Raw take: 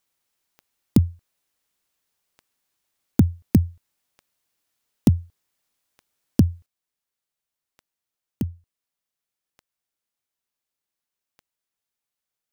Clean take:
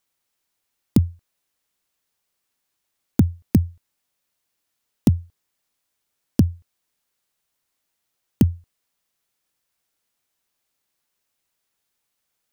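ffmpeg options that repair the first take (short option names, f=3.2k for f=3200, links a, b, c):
-af "adeclick=t=4,asetnsamples=n=441:p=0,asendcmd='6.66 volume volume 10dB',volume=0dB"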